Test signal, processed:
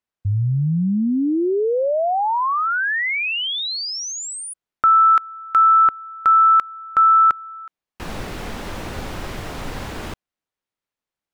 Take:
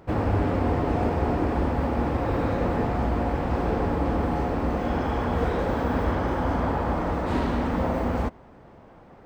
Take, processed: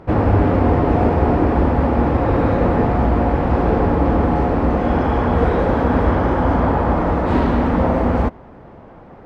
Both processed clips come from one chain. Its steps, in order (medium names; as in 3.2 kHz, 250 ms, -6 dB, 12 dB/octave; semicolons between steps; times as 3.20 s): low-pass 2.1 kHz 6 dB/octave; trim +9 dB